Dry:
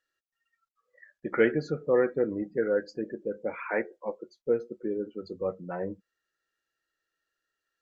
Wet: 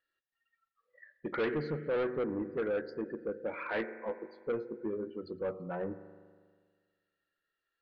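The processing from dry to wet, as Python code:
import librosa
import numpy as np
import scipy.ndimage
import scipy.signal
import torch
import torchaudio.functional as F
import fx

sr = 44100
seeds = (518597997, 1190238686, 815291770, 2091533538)

y = fx.doubler(x, sr, ms=18.0, db=-5.5, at=(3.71, 5.16))
y = fx.rev_spring(y, sr, rt60_s=1.7, pass_ms=(40,), chirp_ms=75, drr_db=13.5)
y = 10.0 ** (-25.5 / 20.0) * np.tanh(y / 10.0 ** (-25.5 / 20.0))
y = scipy.signal.sosfilt(scipy.signal.butter(6, 4300.0, 'lowpass', fs=sr, output='sos'), y)
y = y * librosa.db_to_amplitude(-2.0)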